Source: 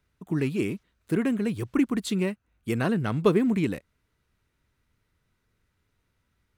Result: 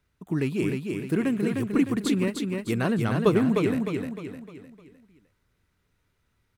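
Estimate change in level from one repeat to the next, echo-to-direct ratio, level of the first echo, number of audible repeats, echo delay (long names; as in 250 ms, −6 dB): −7.5 dB, −3.0 dB, −4.0 dB, 5, 305 ms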